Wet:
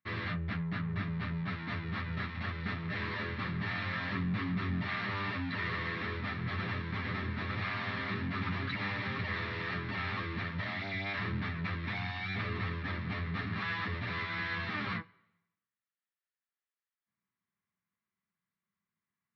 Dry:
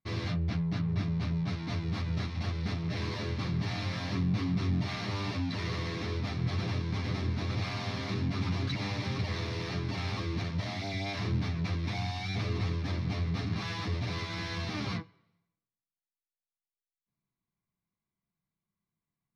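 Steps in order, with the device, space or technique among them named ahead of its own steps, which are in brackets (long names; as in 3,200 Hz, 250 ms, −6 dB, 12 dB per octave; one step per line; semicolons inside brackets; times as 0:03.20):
guitar cabinet (loudspeaker in its box 110–3,600 Hz, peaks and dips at 140 Hz −10 dB, 310 Hz −7 dB, 470 Hz −4 dB, 720 Hz −6 dB, 1,300 Hz +6 dB, 1,800 Hz +9 dB)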